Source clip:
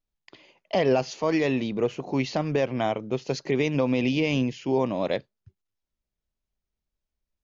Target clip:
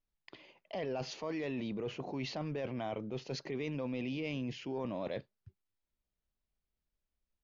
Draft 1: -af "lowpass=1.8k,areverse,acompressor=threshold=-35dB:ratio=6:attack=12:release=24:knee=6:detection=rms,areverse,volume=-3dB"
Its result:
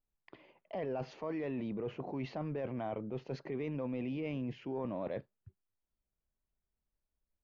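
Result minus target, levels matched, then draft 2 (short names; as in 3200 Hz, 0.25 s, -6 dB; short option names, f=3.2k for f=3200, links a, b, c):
4000 Hz band -10.0 dB
-af "lowpass=4.7k,areverse,acompressor=threshold=-35dB:ratio=6:attack=12:release=24:knee=6:detection=rms,areverse,volume=-3dB"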